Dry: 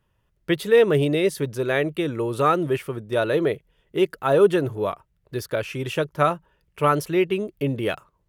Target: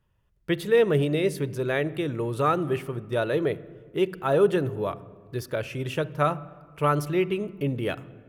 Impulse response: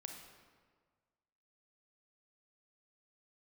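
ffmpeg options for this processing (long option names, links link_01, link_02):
-filter_complex "[0:a]asplit=2[link_01][link_02];[link_02]bass=frequency=250:gain=12,treble=frequency=4000:gain=-9[link_03];[1:a]atrim=start_sample=2205[link_04];[link_03][link_04]afir=irnorm=-1:irlink=0,volume=-7.5dB[link_05];[link_01][link_05]amix=inputs=2:normalize=0,volume=-5.5dB"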